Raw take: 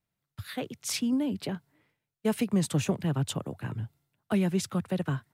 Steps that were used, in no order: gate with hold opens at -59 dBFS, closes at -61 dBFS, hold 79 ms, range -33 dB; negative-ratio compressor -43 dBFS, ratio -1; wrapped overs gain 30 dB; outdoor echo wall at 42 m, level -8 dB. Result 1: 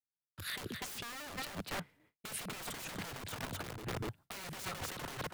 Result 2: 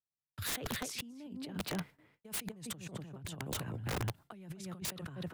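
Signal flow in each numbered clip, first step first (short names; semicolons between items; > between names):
wrapped overs > outdoor echo > negative-ratio compressor > gate with hold; gate with hold > outdoor echo > negative-ratio compressor > wrapped overs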